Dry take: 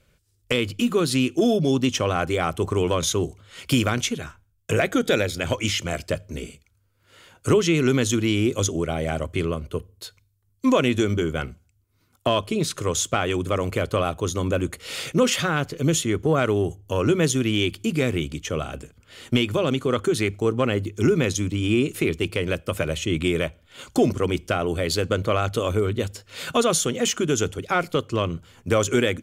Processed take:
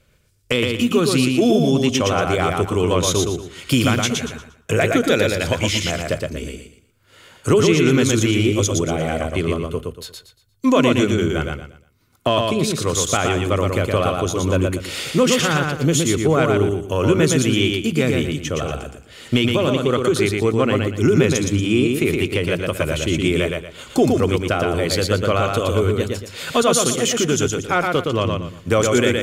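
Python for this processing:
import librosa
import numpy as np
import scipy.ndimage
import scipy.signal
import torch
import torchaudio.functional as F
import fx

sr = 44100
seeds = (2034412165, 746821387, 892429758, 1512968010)

y = fx.echo_feedback(x, sr, ms=117, feedback_pct=29, wet_db=-3.5)
y = y * librosa.db_to_amplitude(3.0)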